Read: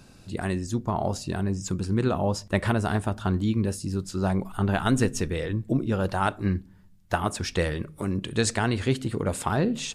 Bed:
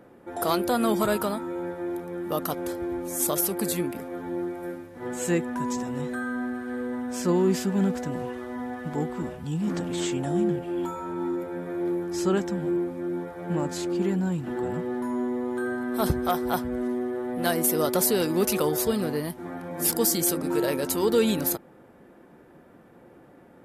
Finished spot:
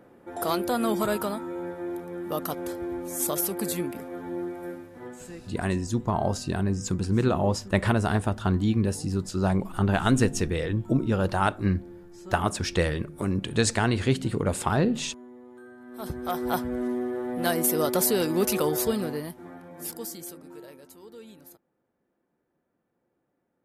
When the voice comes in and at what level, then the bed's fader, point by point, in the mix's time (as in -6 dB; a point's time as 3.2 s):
5.20 s, +1.0 dB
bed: 4.96 s -2 dB
5.32 s -18.5 dB
15.76 s -18.5 dB
16.47 s -0.5 dB
18.88 s -0.5 dB
21.02 s -24.5 dB